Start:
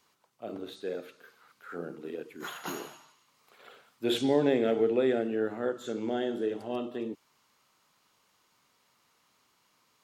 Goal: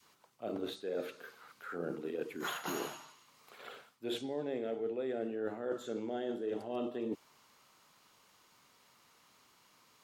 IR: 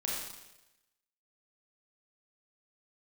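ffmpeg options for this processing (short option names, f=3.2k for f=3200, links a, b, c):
-af "adynamicequalizer=threshold=0.0126:dfrequency=600:dqfactor=1:tfrequency=600:tqfactor=1:attack=5:release=100:ratio=0.375:range=2:mode=boostabove:tftype=bell,areverse,acompressor=threshold=-37dB:ratio=16,areverse,volume=3.5dB"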